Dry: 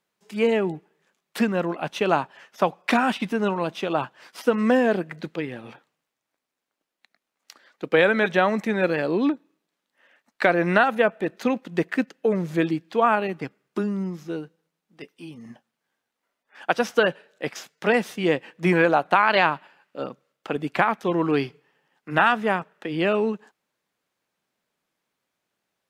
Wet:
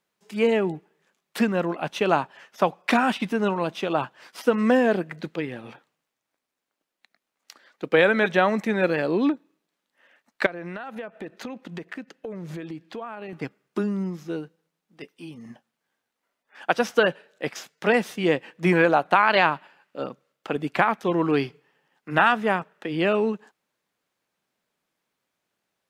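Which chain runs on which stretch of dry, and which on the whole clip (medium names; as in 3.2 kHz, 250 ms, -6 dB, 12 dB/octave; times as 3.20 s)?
10.46–13.33 s: treble shelf 6.8 kHz -5 dB + compression 10:1, threshold -31 dBFS
whole clip: none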